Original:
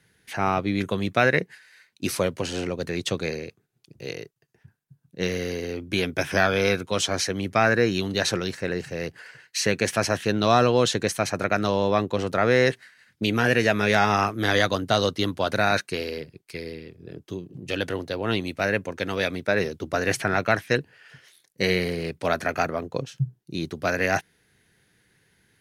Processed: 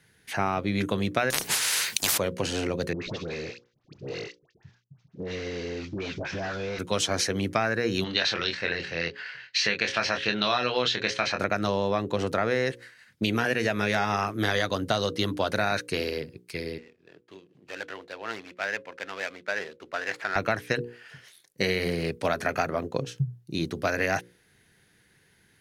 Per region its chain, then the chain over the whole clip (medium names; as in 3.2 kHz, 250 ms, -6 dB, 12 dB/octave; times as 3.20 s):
1.30–2.18 s: treble shelf 2.5 kHz +11 dB + spectrum-flattening compressor 10:1
2.93–6.79 s: CVSD coder 32 kbps + phase dispersion highs, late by 87 ms, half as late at 980 Hz + compression 5:1, threshold -31 dBFS
8.04–11.40 s: low-pass 4.3 kHz 24 dB/octave + tilt shelf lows -8 dB, about 1.1 kHz + doubling 24 ms -5 dB
16.78–20.36 s: median filter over 15 samples + band-pass filter 2.5 kHz, Q 0.79
whole clip: hum notches 60/120/180/240/300/360/420/480/540 Hz; compression, threshold -23 dBFS; trim +1.5 dB